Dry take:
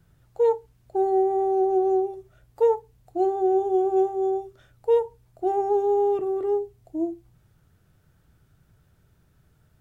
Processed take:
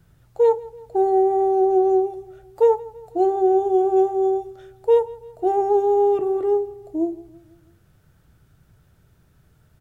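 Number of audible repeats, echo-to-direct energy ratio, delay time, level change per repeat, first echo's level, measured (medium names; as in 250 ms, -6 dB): 3, -18.5 dB, 165 ms, -5.5 dB, -20.0 dB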